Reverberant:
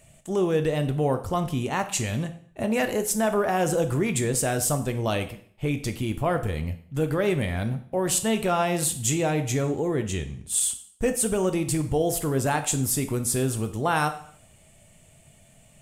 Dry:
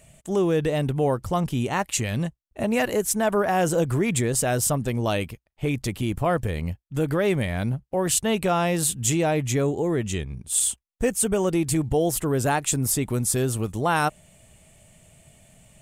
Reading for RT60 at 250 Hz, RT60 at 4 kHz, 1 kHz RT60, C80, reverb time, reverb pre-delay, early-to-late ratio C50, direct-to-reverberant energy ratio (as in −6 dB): 0.55 s, 0.50 s, 0.55 s, 15.5 dB, 0.55 s, 5 ms, 12.0 dB, 7.5 dB